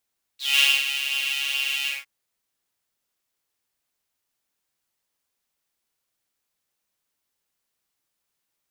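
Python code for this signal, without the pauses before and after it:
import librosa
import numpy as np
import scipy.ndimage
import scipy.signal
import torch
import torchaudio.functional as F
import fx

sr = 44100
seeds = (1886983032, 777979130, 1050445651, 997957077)

y = fx.sub_patch_pwm(sr, seeds[0], note=61, wave2='saw', interval_st=0, detune_cents=16, level2_db=-9.0, sub_db=-5, noise_db=-10.0, kind='highpass', cutoff_hz=2100.0, q=8.5, env_oct=1.0, env_decay_s=0.1, env_sustain_pct=40, attack_ms=213.0, decay_s=0.23, sustain_db=-9.5, release_s=0.18, note_s=1.48, lfo_hz=2.3, width_pct=32, width_swing_pct=19)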